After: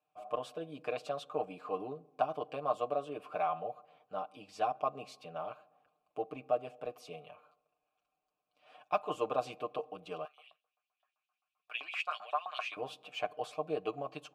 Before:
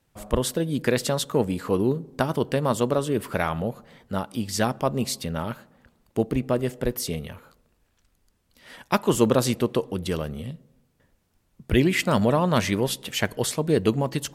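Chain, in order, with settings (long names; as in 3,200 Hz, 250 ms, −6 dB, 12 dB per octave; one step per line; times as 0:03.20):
comb filter 6.6 ms, depth 86%
0:10.25–0:12.77: auto-filter high-pass saw up 7.7 Hz 950–4,000 Hz
formant filter a
level −1.5 dB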